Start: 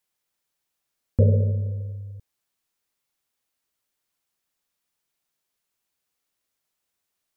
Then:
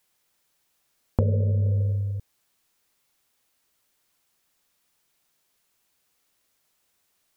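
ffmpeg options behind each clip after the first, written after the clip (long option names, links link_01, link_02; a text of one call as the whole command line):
ffmpeg -i in.wav -af "acompressor=threshold=-28dB:ratio=12,volume=9dB" out.wav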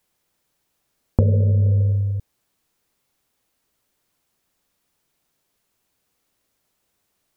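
ffmpeg -i in.wav -af "tiltshelf=frequency=760:gain=4,volume=2dB" out.wav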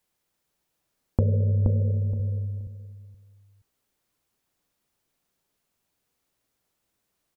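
ffmpeg -i in.wav -filter_complex "[0:a]asplit=2[link_01][link_02];[link_02]adelay=473,lowpass=frequency=920:poles=1,volume=-3.5dB,asplit=2[link_03][link_04];[link_04]adelay=473,lowpass=frequency=920:poles=1,volume=0.21,asplit=2[link_05][link_06];[link_06]adelay=473,lowpass=frequency=920:poles=1,volume=0.21[link_07];[link_01][link_03][link_05][link_07]amix=inputs=4:normalize=0,volume=-5.5dB" out.wav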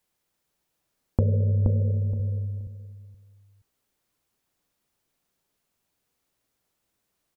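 ffmpeg -i in.wav -af anull out.wav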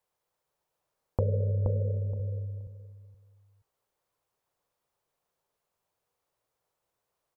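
ffmpeg -i in.wav -af "equalizer=frequency=125:width_type=o:width=1:gain=4,equalizer=frequency=250:width_type=o:width=1:gain=-7,equalizer=frequency=500:width_type=o:width=1:gain=9,equalizer=frequency=1000:width_type=o:width=1:gain=8,volume=-8dB" out.wav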